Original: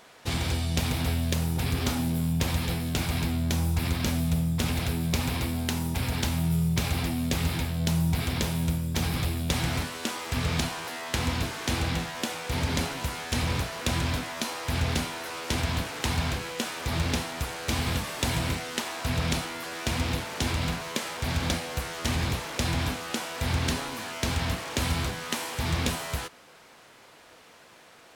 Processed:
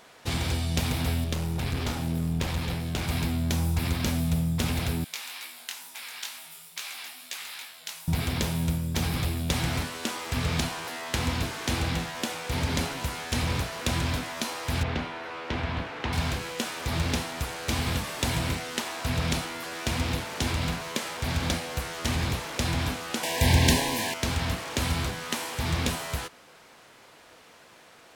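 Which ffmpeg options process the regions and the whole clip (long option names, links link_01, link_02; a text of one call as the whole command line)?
ffmpeg -i in.wav -filter_complex "[0:a]asettb=1/sr,asplit=3[link_01][link_02][link_03];[link_01]atrim=end=1.244[link_04];[link_02]atrim=start=1.24:end=3.08,asetpts=PTS-STARTPTS,afade=type=in:duration=0.004:curve=qsin,afade=type=out:start_time=1.836:duration=0.004:curve=qsin,highshelf=frequency=7600:gain=-7.5,bandreject=frequency=50:width_type=h:width=6,bandreject=frequency=100:width_type=h:width=6,bandreject=frequency=150:width_type=h:width=6,bandreject=frequency=200:width_type=h:width=6,bandreject=frequency=250:width_type=h:width=6,bandreject=frequency=300:width_type=h:width=6,bandreject=frequency=350:width_type=h:width=6,aeval=exprs='clip(val(0),-1,0.0398)':channel_layout=same[link_05];[link_03]atrim=start=3.076[link_06];[link_04][link_05]acrossfade=duration=0.004:curve1=hsin:curve2=qsin[link_07];[link_07][link_06]acrossfade=duration=0.004:curve1=qsin:curve2=hsin,asettb=1/sr,asplit=3[link_08][link_09][link_10];[link_08]atrim=end=5.044[link_11];[link_09]atrim=start=5.04:end=8.08,asetpts=PTS-STARTPTS,afade=type=in:duration=0.004:curve=qsin,afade=type=out:start_time=3.036:duration=0.004:curve=qsin,highpass=1400,flanger=delay=15:depth=8:speed=2.2[link_12];[link_10]atrim=start=8.076[link_13];[link_11][link_12]acrossfade=duration=0.004:curve1=hsin:curve2=qsin[link_14];[link_14][link_13]acrossfade=duration=0.004:curve1=qsin:curve2=hsin,asettb=1/sr,asplit=3[link_15][link_16][link_17];[link_15]atrim=end=14.834[link_18];[link_16]atrim=start=14.83:end=16.13,asetpts=PTS-STARTPTS,afade=type=in:duration=0.004:curve=qsin,afade=type=out:start_time=1.296:duration=0.004:curve=qsin,acrossover=split=6200[link_19][link_20];[link_20]acompressor=threshold=-55dB:ratio=4:attack=1:release=60[link_21];[link_19][link_21]amix=inputs=2:normalize=0,bass=frequency=250:gain=-3,treble=frequency=4000:gain=-14[link_22];[link_17]atrim=start=16.126[link_23];[link_18][link_22]acrossfade=duration=0.004:curve1=hsin:curve2=qsin[link_24];[link_24][link_23]acrossfade=duration=0.004:curve1=qsin:curve2=hsin,asettb=1/sr,asplit=3[link_25][link_26][link_27];[link_25]atrim=end=23.234[link_28];[link_26]atrim=start=23.23:end=24.14,asetpts=PTS-STARTPTS,afade=type=in:duration=0.004:curve=qsin,afade=type=out:start_time=0.906:duration=0.004:curve=qsin,highshelf=frequency=11000:gain=6,acontrast=80,asuperstop=centerf=1300:order=12:qfactor=2.7[link_29];[link_27]atrim=start=24.136[link_30];[link_28][link_29]acrossfade=duration=0.004:curve1=hsin:curve2=qsin[link_31];[link_31][link_30]acrossfade=duration=0.004:curve1=qsin:curve2=hsin" out.wav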